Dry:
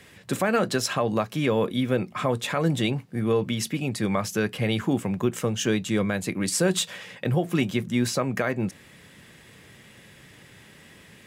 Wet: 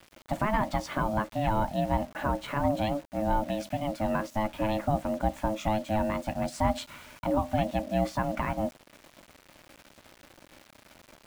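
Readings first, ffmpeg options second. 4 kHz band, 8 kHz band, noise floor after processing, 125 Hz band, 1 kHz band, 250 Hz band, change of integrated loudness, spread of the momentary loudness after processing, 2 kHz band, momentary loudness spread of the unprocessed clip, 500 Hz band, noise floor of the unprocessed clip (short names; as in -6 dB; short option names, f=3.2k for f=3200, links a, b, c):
-11.5 dB, -15.5 dB, -59 dBFS, -5.5 dB, +3.5 dB, -5.5 dB, -4.5 dB, 4 LU, -6.5 dB, 4 LU, -4.0 dB, -51 dBFS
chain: -af "lowpass=f=1.3k:p=1,acrusher=bits=7:mix=0:aa=0.000001,aeval=exprs='val(0)*sin(2*PI*430*n/s)':c=same"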